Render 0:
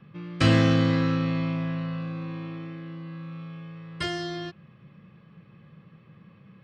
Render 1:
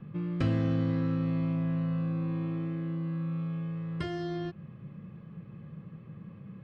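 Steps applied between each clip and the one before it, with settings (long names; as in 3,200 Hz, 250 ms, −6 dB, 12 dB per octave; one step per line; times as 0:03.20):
low-shelf EQ 110 Hz −9 dB
downward compressor 3 to 1, threshold −37 dBFS, peak gain reduction 14.5 dB
spectral tilt −3.5 dB per octave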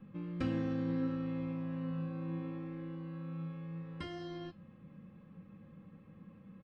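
flanger 0.7 Hz, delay 9.3 ms, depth 3.7 ms, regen +80%
comb filter 3.8 ms, depth 64%
level −3 dB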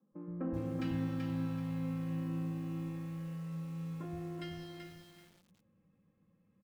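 noise gate −47 dBFS, range −14 dB
three-band delay without the direct sound mids, lows, highs 120/410 ms, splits 200/1,300 Hz
feedback echo at a low word length 383 ms, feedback 35%, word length 10 bits, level −4 dB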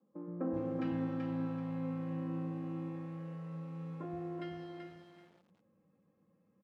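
resonant band-pass 590 Hz, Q 0.63
level +4.5 dB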